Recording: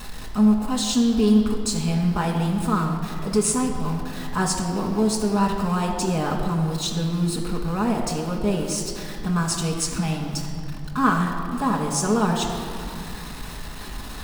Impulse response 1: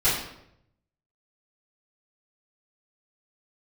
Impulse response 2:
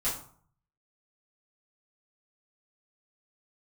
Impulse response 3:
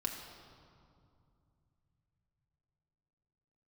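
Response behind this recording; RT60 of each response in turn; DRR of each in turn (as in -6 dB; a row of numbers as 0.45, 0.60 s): 3; 0.75, 0.55, 2.5 s; -14.5, -10.5, 0.0 dB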